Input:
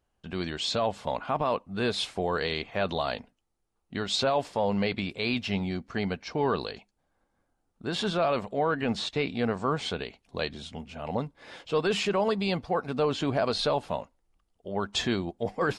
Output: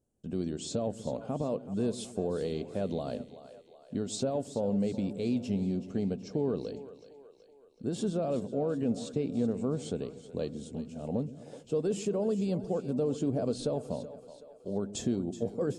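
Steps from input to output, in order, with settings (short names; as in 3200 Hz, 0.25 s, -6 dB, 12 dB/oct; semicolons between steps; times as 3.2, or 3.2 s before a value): graphic EQ 125/250/500/1000/2000/4000/8000 Hz +8/+10/+8/-8/-11/-7/+12 dB; compressor 2:1, threshold -21 dBFS, peak gain reduction 5.5 dB; on a send: split-band echo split 420 Hz, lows 0.123 s, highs 0.376 s, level -13.5 dB; on the sum: gain -8 dB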